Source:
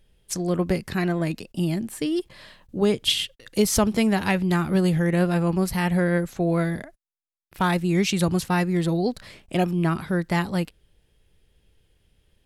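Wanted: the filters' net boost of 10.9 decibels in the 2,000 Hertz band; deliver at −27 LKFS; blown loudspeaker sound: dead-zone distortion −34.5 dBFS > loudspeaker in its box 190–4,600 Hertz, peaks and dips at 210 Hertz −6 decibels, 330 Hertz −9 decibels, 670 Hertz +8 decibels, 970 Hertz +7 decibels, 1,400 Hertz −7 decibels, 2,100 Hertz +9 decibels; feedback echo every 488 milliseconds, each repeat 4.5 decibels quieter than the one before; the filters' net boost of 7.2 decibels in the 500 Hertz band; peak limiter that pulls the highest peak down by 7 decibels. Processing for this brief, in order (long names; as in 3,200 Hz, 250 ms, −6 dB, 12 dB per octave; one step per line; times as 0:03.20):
parametric band 500 Hz +8 dB
parametric band 2,000 Hz +8 dB
brickwall limiter −11 dBFS
repeating echo 488 ms, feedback 60%, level −4.5 dB
dead-zone distortion −34.5 dBFS
loudspeaker in its box 190–4,600 Hz, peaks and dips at 210 Hz −6 dB, 330 Hz −9 dB, 670 Hz +8 dB, 970 Hz +7 dB, 1,400 Hz −7 dB, 2,100 Hz +9 dB
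level −5.5 dB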